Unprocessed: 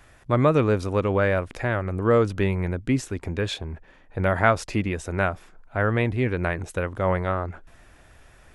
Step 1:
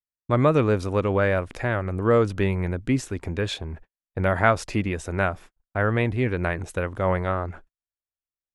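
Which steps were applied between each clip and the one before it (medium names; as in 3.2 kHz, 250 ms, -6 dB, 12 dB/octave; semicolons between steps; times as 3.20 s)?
gate -41 dBFS, range -55 dB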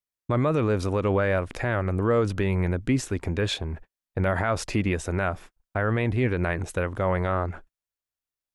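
peak limiter -16 dBFS, peak gain reduction 11.5 dB; trim +2 dB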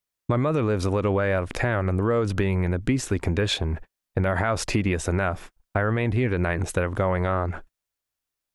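compression, threshold -25 dBFS, peak gain reduction 7 dB; trim +6 dB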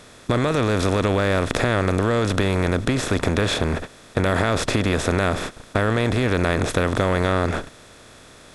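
spectral levelling over time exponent 0.4; trim -2 dB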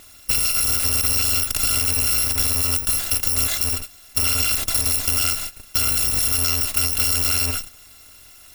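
bit-reversed sample order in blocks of 256 samples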